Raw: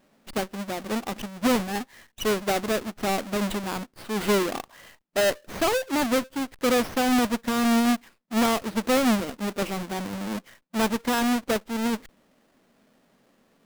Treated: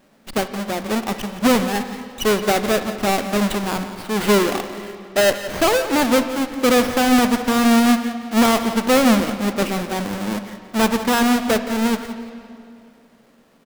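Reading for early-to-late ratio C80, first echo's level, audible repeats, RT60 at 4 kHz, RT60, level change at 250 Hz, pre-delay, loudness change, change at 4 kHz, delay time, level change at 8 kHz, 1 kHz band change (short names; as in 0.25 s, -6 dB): 9.5 dB, -14.0 dB, 2, 2.1 s, 2.6 s, +7.0 dB, 31 ms, +7.0 dB, +7.0 dB, 0.173 s, +6.5 dB, +7.0 dB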